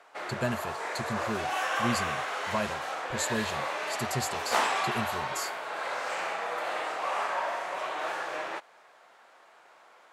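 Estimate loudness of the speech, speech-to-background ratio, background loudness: -36.0 LUFS, -4.0 dB, -32.0 LUFS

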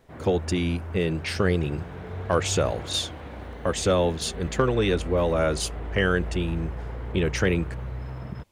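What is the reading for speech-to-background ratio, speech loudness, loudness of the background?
10.0 dB, -26.0 LUFS, -36.0 LUFS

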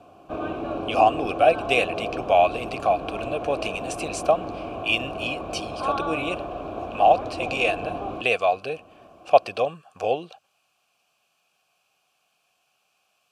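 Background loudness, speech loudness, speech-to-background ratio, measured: -32.0 LUFS, -24.0 LUFS, 8.0 dB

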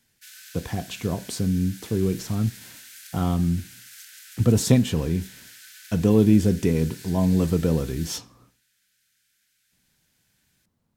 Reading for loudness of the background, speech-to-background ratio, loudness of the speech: -42.5 LUFS, 19.0 dB, -23.5 LUFS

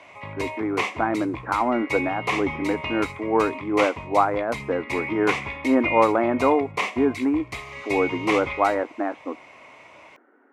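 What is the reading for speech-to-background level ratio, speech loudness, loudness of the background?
6.0 dB, -24.0 LUFS, -30.0 LUFS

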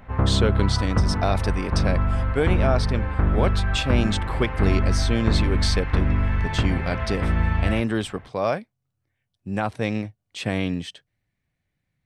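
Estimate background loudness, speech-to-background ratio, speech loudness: -24.0 LUFS, -3.0 dB, -27.0 LUFS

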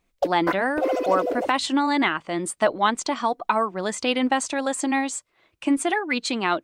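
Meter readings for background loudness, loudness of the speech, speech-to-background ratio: -27.5 LUFS, -24.0 LUFS, 3.5 dB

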